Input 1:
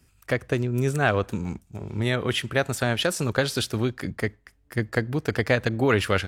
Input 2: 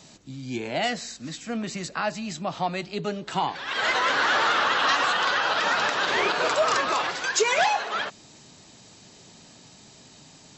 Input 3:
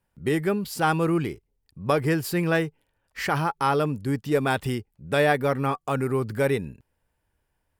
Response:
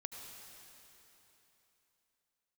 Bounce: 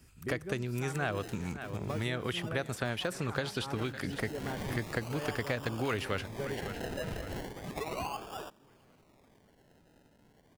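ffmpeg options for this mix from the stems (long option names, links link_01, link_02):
-filter_complex "[0:a]volume=1dB,asplit=2[link_01][link_02];[link_02]volume=-20.5dB[link_03];[1:a]acrusher=samples=30:mix=1:aa=0.000001:lfo=1:lforange=18:lforate=0.34,adelay=400,volume=-13.5dB[link_04];[2:a]tiltshelf=frequency=1400:gain=7,volume=-16.5dB[link_05];[link_03]aecho=0:1:556|1112|1668|2224|2780|3336:1|0.44|0.194|0.0852|0.0375|0.0165[link_06];[link_01][link_04][link_05][link_06]amix=inputs=4:normalize=0,acrossover=split=1200|3400[link_07][link_08][link_09];[link_07]acompressor=threshold=-34dB:ratio=4[link_10];[link_08]acompressor=threshold=-40dB:ratio=4[link_11];[link_09]acompressor=threshold=-48dB:ratio=4[link_12];[link_10][link_11][link_12]amix=inputs=3:normalize=0"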